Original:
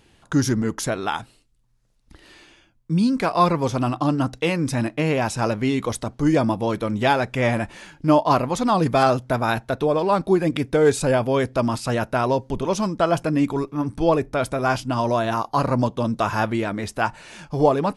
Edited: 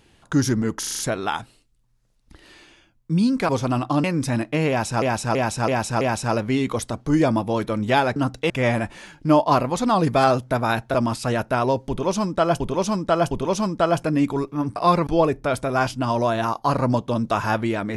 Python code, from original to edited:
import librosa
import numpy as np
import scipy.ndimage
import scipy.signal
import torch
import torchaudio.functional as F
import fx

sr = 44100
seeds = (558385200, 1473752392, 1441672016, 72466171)

y = fx.edit(x, sr, fx.stutter(start_s=0.79, slice_s=0.04, count=6),
    fx.move(start_s=3.29, length_s=0.31, to_s=13.96),
    fx.move(start_s=4.15, length_s=0.34, to_s=7.29),
    fx.repeat(start_s=5.14, length_s=0.33, count=5),
    fx.cut(start_s=9.73, length_s=1.83),
    fx.repeat(start_s=12.51, length_s=0.71, count=3), tone=tone)